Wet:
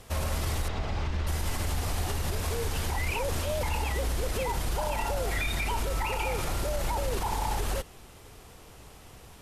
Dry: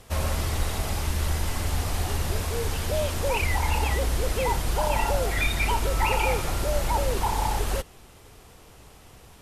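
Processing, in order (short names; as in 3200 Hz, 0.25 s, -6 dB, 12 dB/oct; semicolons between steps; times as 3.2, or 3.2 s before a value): limiter -21 dBFS, peak gain reduction 10 dB; 0.68–1.27 air absorption 170 m; 2.9–3.63 reverse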